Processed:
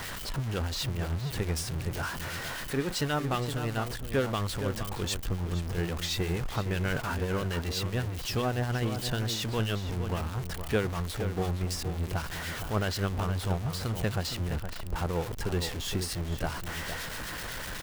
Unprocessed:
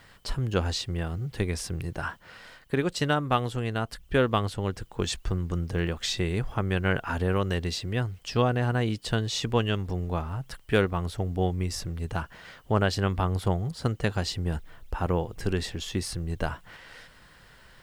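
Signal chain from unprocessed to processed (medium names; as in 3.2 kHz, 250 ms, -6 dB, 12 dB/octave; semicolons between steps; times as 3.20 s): jump at every zero crossing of -25 dBFS; harmonic tremolo 7.9 Hz, depth 50%, crossover 1.8 kHz; echo from a far wall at 80 m, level -8 dB; trim -5 dB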